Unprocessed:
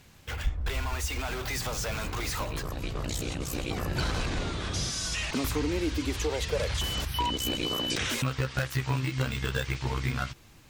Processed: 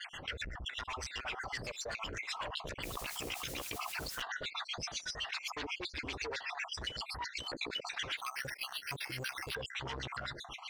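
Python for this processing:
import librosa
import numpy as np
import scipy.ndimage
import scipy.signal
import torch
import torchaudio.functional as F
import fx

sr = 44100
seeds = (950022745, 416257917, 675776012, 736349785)

y = fx.spec_dropout(x, sr, seeds[0], share_pct=57)
y = 10.0 ** (-31.5 / 20.0) * np.tanh(y / 10.0 ** (-31.5 / 20.0))
y = fx.filter_lfo_lowpass(y, sr, shape='sine', hz=7.9, low_hz=450.0, high_hz=3400.0, q=1.6)
y = fx.wow_flutter(y, sr, seeds[1], rate_hz=2.1, depth_cents=27.0)
y = fx.dmg_noise_colour(y, sr, seeds[2], colour='pink', level_db=-61.0, at=(2.82, 4.21), fade=0.02)
y = scipy.signal.lfilter([1.0, -0.97], [1.0], y)
y = fx.resample_bad(y, sr, factor=6, down='none', up='hold', at=(8.17, 9.55))
y = fx.high_shelf(y, sr, hz=12000.0, db=-7.5)
y = fx.env_flatten(y, sr, amount_pct=70)
y = F.gain(torch.from_numpy(y), 6.5).numpy()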